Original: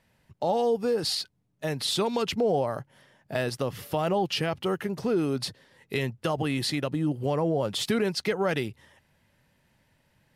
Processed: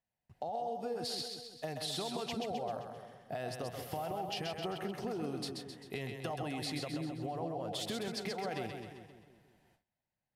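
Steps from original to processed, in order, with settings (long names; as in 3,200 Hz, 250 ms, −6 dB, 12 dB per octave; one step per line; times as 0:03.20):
parametric band 730 Hz +14.5 dB 0.22 octaves
brickwall limiter −18 dBFS, peak gain reduction 10.5 dB
downward compressor, threshold −30 dBFS, peak gain reduction 8.5 dB
echo with a time of its own for lows and highs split 480 Hz, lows 176 ms, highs 131 ms, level −4.5 dB
noise gate with hold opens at −52 dBFS
level −6.5 dB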